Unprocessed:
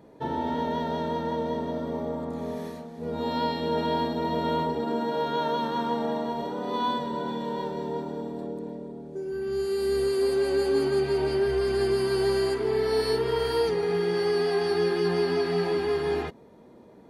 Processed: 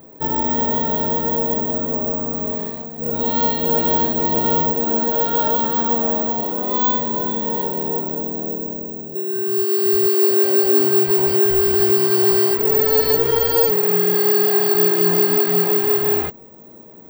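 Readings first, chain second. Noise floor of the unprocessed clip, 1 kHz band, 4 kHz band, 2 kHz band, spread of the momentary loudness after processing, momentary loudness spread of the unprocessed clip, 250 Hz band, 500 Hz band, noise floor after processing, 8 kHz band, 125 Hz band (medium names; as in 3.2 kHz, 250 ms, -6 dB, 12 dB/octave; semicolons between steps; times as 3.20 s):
-51 dBFS, +6.0 dB, +6.0 dB, +6.0 dB, 9 LU, 10 LU, +6.0 dB, +6.0 dB, -42 dBFS, +6.5 dB, +6.0 dB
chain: careless resampling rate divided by 2×, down none, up zero stuff; trim +6 dB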